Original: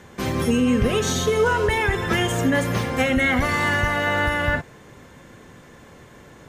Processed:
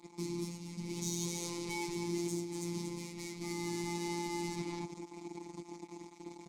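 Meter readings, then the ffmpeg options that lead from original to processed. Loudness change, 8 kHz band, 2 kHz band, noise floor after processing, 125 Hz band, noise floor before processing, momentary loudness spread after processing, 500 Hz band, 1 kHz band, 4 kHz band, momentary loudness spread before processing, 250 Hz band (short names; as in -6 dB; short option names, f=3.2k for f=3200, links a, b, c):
-19.0 dB, -9.0 dB, -26.0 dB, -56 dBFS, -17.5 dB, -47 dBFS, 11 LU, -19.5 dB, -19.5 dB, -16.5 dB, 4 LU, -15.0 dB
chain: -filter_complex "[0:a]alimiter=limit=-17.5dB:level=0:latency=1,lowshelf=f=490:t=q:w=1.5:g=10.5,acrossover=split=200|3000[a][b][c];[b]acompressor=threshold=-27dB:ratio=6[d];[a][d][c]amix=inputs=3:normalize=0,lowpass=7.5k,equalizer=f=290:t=o:w=0.24:g=-8.5,bandreject=f=60:t=h:w=6,bandreject=f=120:t=h:w=6,bandreject=f=180:t=h:w=6,bandreject=f=240:t=h:w=6,bandreject=f=300:t=h:w=6,bandreject=f=360:t=h:w=6,aecho=1:1:238:0.398,acrusher=bits=4:mix=0:aa=0.5,asplit=3[e][f][g];[e]bandpass=f=300:t=q:w=8,volume=0dB[h];[f]bandpass=f=870:t=q:w=8,volume=-6dB[i];[g]bandpass=f=2.24k:t=q:w=8,volume=-9dB[j];[h][i][j]amix=inputs=3:normalize=0,areverse,acompressor=threshold=-41dB:ratio=8,areverse,aexciter=amount=14:drive=6.9:freq=4.4k,afftfilt=real='hypot(re,im)*cos(PI*b)':imag='0':win_size=1024:overlap=0.75,volume=9.5dB"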